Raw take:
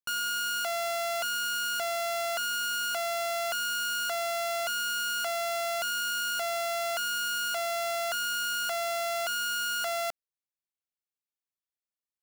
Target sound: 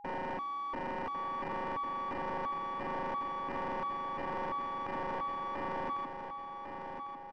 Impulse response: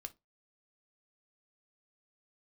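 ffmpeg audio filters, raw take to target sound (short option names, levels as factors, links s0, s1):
-filter_complex "[0:a]aecho=1:1:4.3:0.66,acrossover=split=560[s0][s1];[s0]acompressor=threshold=0.00355:ratio=6[s2];[s2][s1]amix=inputs=2:normalize=0,asetrate=73647,aresample=44100,aresample=11025,acrusher=bits=5:dc=4:mix=0:aa=0.000001,aresample=44100,adynamicsmooth=sensitivity=1:basefreq=610,highpass=110,equalizer=f=270:t=q:w=4:g=9,equalizer=f=410:t=q:w=4:g=-4,equalizer=f=620:t=q:w=4:g=-5,equalizer=f=1400:t=q:w=4:g=-8,equalizer=f=2300:t=q:w=4:g=-7,equalizer=f=3300:t=q:w=4:g=-4,lowpass=f=3800:w=0.5412,lowpass=f=3800:w=1.3066,asplit=2[s3][s4];[s4]highpass=f=720:p=1,volume=7.08,asoftclip=type=tanh:threshold=0.0422[s5];[s3][s5]amix=inputs=2:normalize=0,lowpass=f=1300:p=1,volume=0.501,aeval=exprs='val(0)+0.00282*sin(2*PI*820*n/s)':c=same,aecho=1:1:1100|2200|3300|4400|5500:0.447|0.192|0.0826|0.0355|0.0153"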